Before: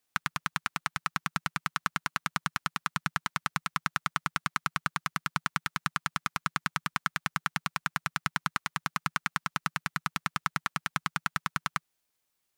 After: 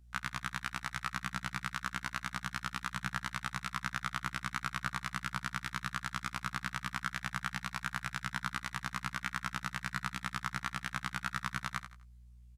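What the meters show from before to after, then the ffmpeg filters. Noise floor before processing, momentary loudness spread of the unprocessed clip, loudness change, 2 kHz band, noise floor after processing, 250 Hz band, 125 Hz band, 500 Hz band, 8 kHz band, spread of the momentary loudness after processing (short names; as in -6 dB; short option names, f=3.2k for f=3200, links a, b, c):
-80 dBFS, 1 LU, -5.0 dB, -4.5 dB, -56 dBFS, -3.5 dB, -2.5 dB, -5.5 dB, -5.5 dB, 1 LU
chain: -af "aeval=exprs='val(0)+0.000794*(sin(2*PI*60*n/s)+sin(2*PI*2*60*n/s)/2+sin(2*PI*3*60*n/s)/3+sin(2*PI*4*60*n/s)/4+sin(2*PI*5*60*n/s)/5)':c=same,lowshelf=f=65:g=8,alimiter=limit=-11dB:level=0:latency=1:release=97,lowpass=12k,aecho=1:1:84|168|252:0.266|0.0825|0.0256,afftfilt=real='re*1.73*eq(mod(b,3),0)':imag='im*1.73*eq(mod(b,3),0)':win_size=2048:overlap=0.75"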